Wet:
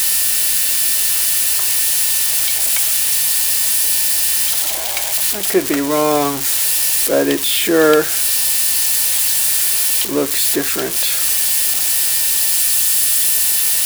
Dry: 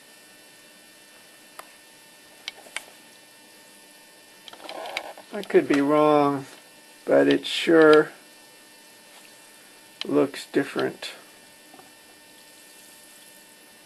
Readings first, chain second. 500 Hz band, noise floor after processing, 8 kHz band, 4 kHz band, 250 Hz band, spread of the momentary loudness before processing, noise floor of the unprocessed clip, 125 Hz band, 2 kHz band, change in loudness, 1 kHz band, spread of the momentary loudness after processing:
+3.0 dB, −20 dBFS, +32.5 dB, +16.5 dB, +3.0 dB, 20 LU, −51 dBFS, +4.0 dB, +8.0 dB, +9.0 dB, +4.0 dB, 4 LU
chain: spike at every zero crossing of −12 dBFS
mains hum 60 Hz, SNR 31 dB
level +3 dB

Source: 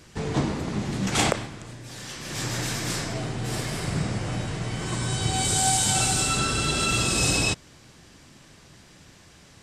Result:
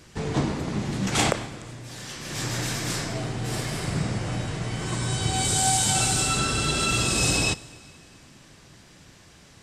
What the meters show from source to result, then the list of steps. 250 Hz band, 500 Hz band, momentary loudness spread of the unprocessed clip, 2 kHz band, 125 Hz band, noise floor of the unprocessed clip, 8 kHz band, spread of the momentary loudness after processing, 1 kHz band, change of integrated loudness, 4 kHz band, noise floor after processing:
0.0 dB, 0.0 dB, 12 LU, 0.0 dB, +0.5 dB, −52 dBFS, 0.0 dB, 12 LU, 0.0 dB, 0.0 dB, 0.0 dB, −52 dBFS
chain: dense smooth reverb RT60 2.3 s, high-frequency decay 0.95×, DRR 18.5 dB

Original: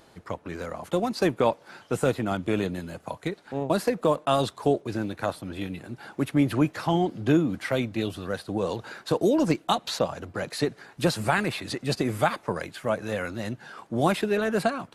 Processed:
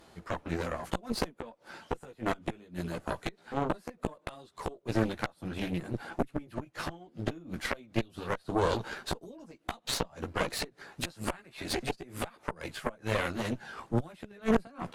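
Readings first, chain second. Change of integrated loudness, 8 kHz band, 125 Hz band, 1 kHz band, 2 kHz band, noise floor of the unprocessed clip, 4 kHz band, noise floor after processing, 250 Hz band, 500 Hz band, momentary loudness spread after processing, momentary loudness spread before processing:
−8.0 dB, −3.5 dB, −7.0 dB, −7.5 dB, −5.5 dB, −56 dBFS, −5.0 dB, −65 dBFS, −9.0 dB, −9.5 dB, 10 LU, 11 LU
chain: gate with flip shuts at −16 dBFS, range −25 dB
multi-voice chorus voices 6, 1.4 Hz, delay 15 ms, depth 3 ms
harmonic generator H 4 −7 dB, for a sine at −17.5 dBFS
level +1.5 dB

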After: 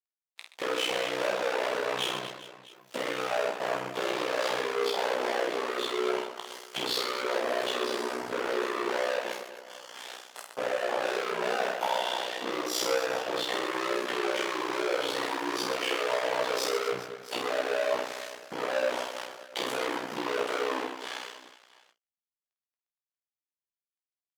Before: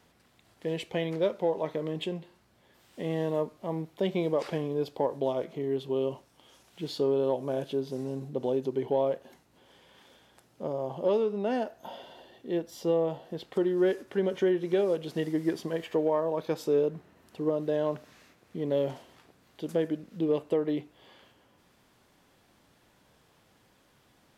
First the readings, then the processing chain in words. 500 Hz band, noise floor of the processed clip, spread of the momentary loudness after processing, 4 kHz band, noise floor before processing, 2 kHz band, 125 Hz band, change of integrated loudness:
−1.5 dB, below −85 dBFS, 11 LU, +12.5 dB, −65 dBFS, +13.5 dB, −15.5 dB, 0.0 dB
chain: every bin's largest magnitude spread in time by 60 ms
high-shelf EQ 2,600 Hz +2.5 dB
fuzz pedal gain 42 dB, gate −50 dBFS
high-shelf EQ 7,300 Hz −10 dB
double-tracking delay 18 ms −6 dB
downward compressor 6 to 1, threshold −20 dBFS, peak gain reduction 9 dB
noise reduction from a noise print of the clip's start 12 dB
flanger 0.63 Hz, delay 2.3 ms, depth 7.1 ms, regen −61%
high-pass filter 520 Hz 12 dB per octave
on a send: reverse bouncing-ball delay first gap 50 ms, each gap 1.5×, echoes 5
on the sum: ring modulation 31 Hz
noise gate with hold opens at −46 dBFS

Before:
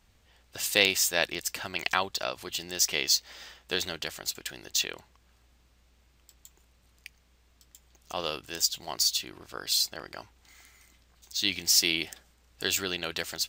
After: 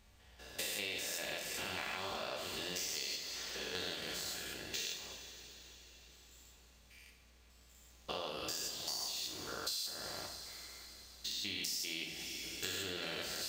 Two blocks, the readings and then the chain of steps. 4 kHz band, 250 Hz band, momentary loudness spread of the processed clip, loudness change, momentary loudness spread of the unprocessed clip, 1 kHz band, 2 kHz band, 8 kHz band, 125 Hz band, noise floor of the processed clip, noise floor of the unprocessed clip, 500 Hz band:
−10.5 dB, −9.5 dB, 17 LU, −12.0 dB, 16 LU, −9.0 dB, −11.0 dB, −12.0 dB, −7.5 dB, −63 dBFS, −64 dBFS, −9.5 dB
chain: spectrum averaged block by block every 200 ms
coupled-rooms reverb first 0.55 s, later 4.9 s, from −18 dB, DRR 0.5 dB
downward compressor 8 to 1, threshold −36 dBFS, peak gain reduction 16 dB
level −1 dB

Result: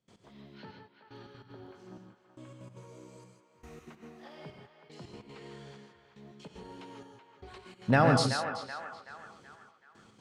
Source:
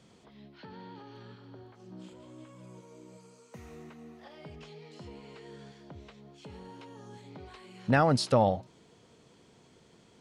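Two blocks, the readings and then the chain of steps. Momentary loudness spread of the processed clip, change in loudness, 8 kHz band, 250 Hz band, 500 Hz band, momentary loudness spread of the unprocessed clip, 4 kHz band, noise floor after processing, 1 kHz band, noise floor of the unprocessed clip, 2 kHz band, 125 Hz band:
24 LU, −1.5 dB, +1.5 dB, −0.5 dB, −2.5 dB, 13 LU, +1.5 dB, −65 dBFS, −1.0 dB, −61 dBFS, +2.5 dB, +0.5 dB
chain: gate pattern ".x.xxxxxx.....xx" 190 BPM −24 dB
on a send: feedback echo with a band-pass in the loop 378 ms, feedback 50%, band-pass 1,400 Hz, level −7 dB
on the sum: reverb whose tail is shaped and stops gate 180 ms rising, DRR 3.5 dB

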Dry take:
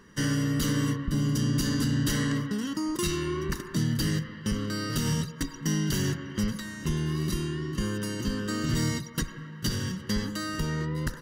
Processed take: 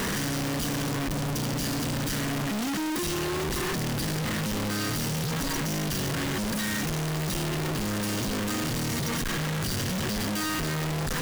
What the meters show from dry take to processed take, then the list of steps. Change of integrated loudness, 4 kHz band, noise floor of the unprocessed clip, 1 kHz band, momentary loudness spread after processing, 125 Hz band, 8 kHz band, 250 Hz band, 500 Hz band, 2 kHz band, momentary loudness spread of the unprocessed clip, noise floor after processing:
+1.0 dB, +3.0 dB, −43 dBFS, +6.0 dB, 1 LU, −1.5 dB, +3.5 dB, −1.0 dB, +3.0 dB, +4.0 dB, 6 LU, −29 dBFS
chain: sign of each sample alone

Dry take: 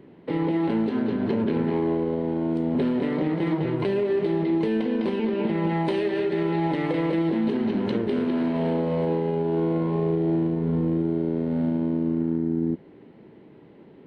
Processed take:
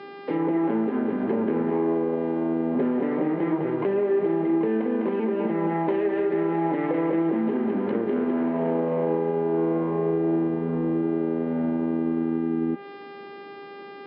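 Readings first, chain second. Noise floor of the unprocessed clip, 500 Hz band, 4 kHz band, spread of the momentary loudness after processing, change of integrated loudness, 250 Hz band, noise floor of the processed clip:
−49 dBFS, +1.5 dB, can't be measured, 3 LU, 0.0 dB, −0.5 dB, −41 dBFS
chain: hum with harmonics 400 Hz, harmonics 13, −42 dBFS −5 dB per octave
treble cut that deepens with the level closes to 1,900 Hz, closed at −21 dBFS
three-way crossover with the lows and the highs turned down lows −18 dB, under 190 Hz, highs −15 dB, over 2,900 Hz
level +1.5 dB

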